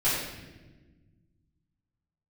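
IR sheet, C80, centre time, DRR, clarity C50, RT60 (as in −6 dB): 3.0 dB, 72 ms, −12.5 dB, 0.0 dB, non-exponential decay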